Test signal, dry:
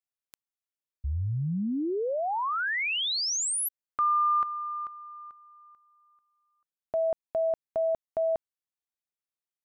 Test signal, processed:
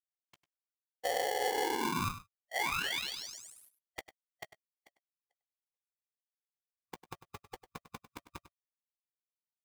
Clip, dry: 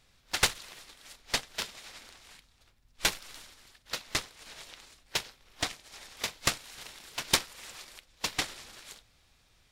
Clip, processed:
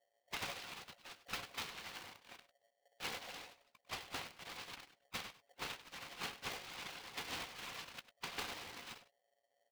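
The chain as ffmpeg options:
ffmpeg -i in.wav -filter_complex "[0:a]afftfilt=real='re*(1-between(b*sr/4096,530,1300))':imag='im*(1-between(b*sr/4096,530,1300))':win_size=4096:overlap=0.75,afftfilt=real='hypot(re,im)*cos(2*PI*random(0))':imag='hypot(re,im)*sin(2*PI*random(1))':win_size=512:overlap=0.75,highpass=frequency=60:width=0.5412,highpass=frequency=60:width=1.3066,anlmdn=0.0001,adynamicequalizer=threshold=0.002:dfrequency=620:dqfactor=0.78:tfrequency=620:tqfactor=0.78:attack=5:release=100:ratio=0.3:range=2.5:mode=cutabove:tftype=bell,acompressor=threshold=-45dB:ratio=2.5:attack=25:release=27:knee=6:detection=rms,alimiter=level_in=11.5dB:limit=-24dB:level=0:latency=1:release=95,volume=-11.5dB,lowpass=2800,asplit=2[link_01][link_02];[link_02]adelay=15,volume=-13dB[link_03];[link_01][link_03]amix=inputs=2:normalize=0,asplit=2[link_04][link_05];[link_05]adelay=99.13,volume=-14dB,highshelf=frequency=4000:gain=-2.23[link_06];[link_04][link_06]amix=inputs=2:normalize=0,aeval=exprs='val(0)*sgn(sin(2*PI*630*n/s))':channel_layout=same,volume=9.5dB" out.wav

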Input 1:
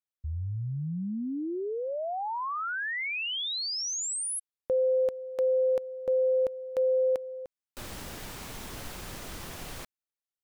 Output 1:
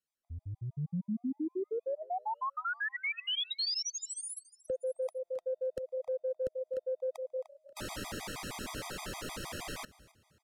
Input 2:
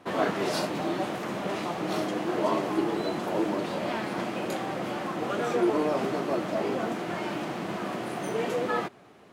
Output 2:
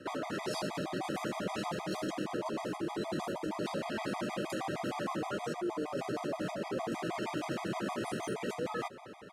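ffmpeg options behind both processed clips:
ffmpeg -i in.wav -filter_complex "[0:a]areverse,acompressor=threshold=-39dB:ratio=6:attack=54:release=22:knee=1:detection=peak,areverse,asplit=4[link_01][link_02][link_03][link_04];[link_02]adelay=267,afreqshift=36,volume=-22dB[link_05];[link_03]adelay=534,afreqshift=72,volume=-30.4dB[link_06];[link_04]adelay=801,afreqshift=108,volume=-38.8dB[link_07];[link_01][link_05][link_06][link_07]amix=inputs=4:normalize=0,acrossover=split=150|5000[link_08][link_09][link_10];[link_08]acompressor=threshold=-49dB:ratio=4[link_11];[link_09]acompressor=threshold=-36dB:ratio=4[link_12];[link_10]acompressor=threshold=-46dB:ratio=4[link_13];[link_11][link_12][link_13]amix=inputs=3:normalize=0,lowpass=12000,afftfilt=real='re*gt(sin(2*PI*6.4*pts/sr)*(1-2*mod(floor(b*sr/1024/640),2)),0)':imag='im*gt(sin(2*PI*6.4*pts/sr)*(1-2*mod(floor(b*sr/1024/640),2)),0)':win_size=1024:overlap=0.75,volume=5dB" out.wav

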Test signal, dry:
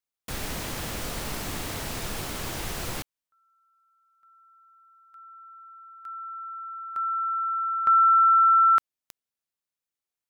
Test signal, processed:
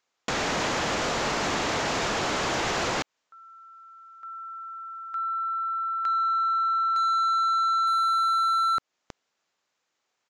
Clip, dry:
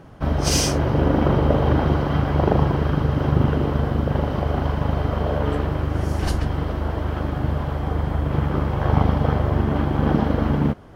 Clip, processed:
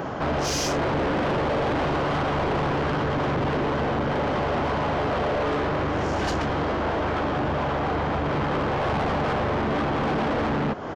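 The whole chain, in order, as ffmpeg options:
ffmpeg -i in.wav -filter_complex "[0:a]asplit=2[link_01][link_02];[link_02]highpass=frequency=720:poles=1,volume=30dB,asoftclip=type=tanh:threshold=-2.5dB[link_03];[link_01][link_03]amix=inputs=2:normalize=0,lowpass=frequency=1100:poles=1,volume=-6dB,aresample=16000,aresample=44100,highshelf=frequency=2100:gain=-2.5,asoftclip=type=tanh:threshold=-13.5dB,acompressor=threshold=-23dB:ratio=6:attack=1.8:release=313:knee=1:detection=rms,aemphasis=mode=production:type=50fm" out.wav

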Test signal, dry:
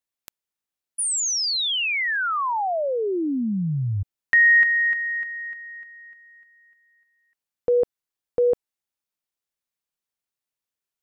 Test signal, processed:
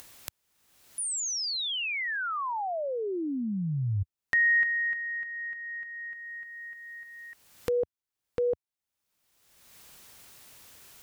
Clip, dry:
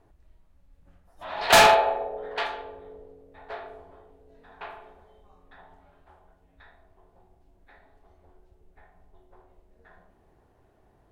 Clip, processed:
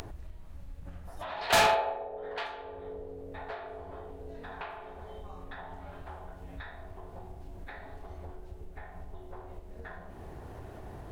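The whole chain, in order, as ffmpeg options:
ffmpeg -i in.wav -af "acompressor=mode=upward:threshold=-23dB:ratio=4:attack=3.1:release=627:knee=2.83:detection=peak,equalizer=frequency=87:width=1:gain=5,volume=-8dB" out.wav

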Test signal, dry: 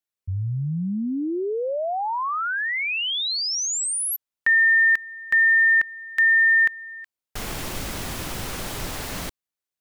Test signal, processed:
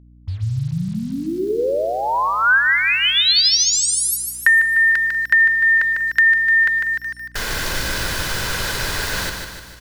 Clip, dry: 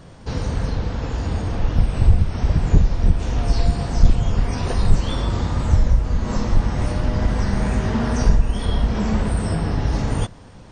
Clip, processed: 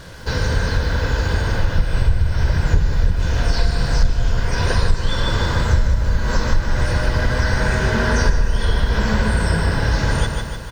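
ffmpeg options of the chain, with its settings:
ffmpeg -i in.wav -filter_complex "[0:a]equalizer=frequency=1600:width=3.3:gain=11,bandreject=frequency=50:width_type=h:width=6,bandreject=frequency=100:width_type=h:width=6,bandreject=frequency=150:width_type=h:width=6,bandreject=frequency=200:width_type=h:width=6,bandreject=frequency=250:width_type=h:width=6,bandreject=frequency=300:width_type=h:width=6,bandreject=frequency=350:width_type=h:width=6,bandreject=frequency=400:width_type=h:width=6,bandreject=frequency=450:width_type=h:width=6,aecho=1:1:2:0.35,asplit=2[link_01][link_02];[link_02]aecho=0:1:150|300|450|600|750|900:0.501|0.261|0.136|0.0705|0.0366|0.0191[link_03];[link_01][link_03]amix=inputs=2:normalize=0,acrusher=bits=7:mix=0:aa=0.5,asplit=2[link_04][link_05];[link_05]aecho=0:1:192:0.1[link_06];[link_04][link_06]amix=inputs=2:normalize=0,acompressor=threshold=-15dB:ratio=6:attack=32:release=627:knee=6:detection=peak,aeval=exprs='val(0)+0.00355*(sin(2*PI*60*n/s)+sin(2*PI*2*60*n/s)/2+sin(2*PI*3*60*n/s)/3+sin(2*PI*4*60*n/s)/4+sin(2*PI*5*60*n/s)/5)':channel_layout=same,equalizer=frequency=4400:width=1.3:gain=6.5,volume=3.5dB" out.wav

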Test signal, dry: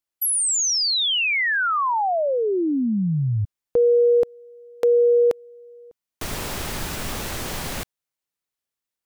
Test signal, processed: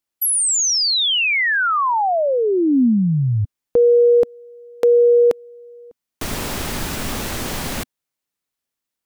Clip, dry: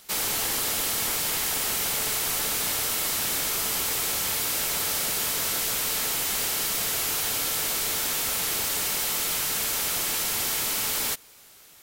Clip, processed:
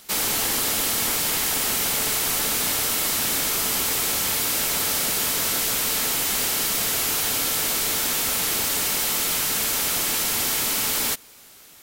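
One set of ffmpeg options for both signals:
ffmpeg -i in.wav -af "equalizer=frequency=250:width_type=o:width=0.62:gain=4.5,volume=3.5dB" out.wav

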